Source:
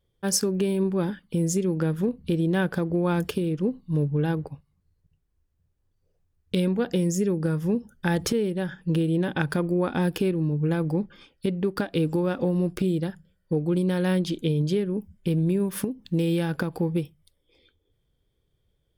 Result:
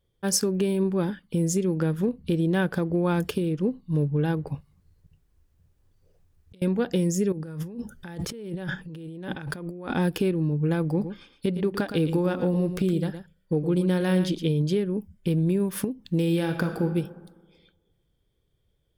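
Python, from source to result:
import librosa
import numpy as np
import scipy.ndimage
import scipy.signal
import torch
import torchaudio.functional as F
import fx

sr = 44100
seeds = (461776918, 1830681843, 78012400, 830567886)

y = fx.over_compress(x, sr, threshold_db=-35.0, ratio=-0.5, at=(4.47, 6.62))
y = fx.over_compress(y, sr, threshold_db=-35.0, ratio=-1.0, at=(7.32, 9.94))
y = fx.echo_single(y, sr, ms=114, db=-10.0, at=(10.97, 14.44), fade=0.02)
y = fx.reverb_throw(y, sr, start_s=16.24, length_s=0.59, rt60_s=1.4, drr_db=6.0)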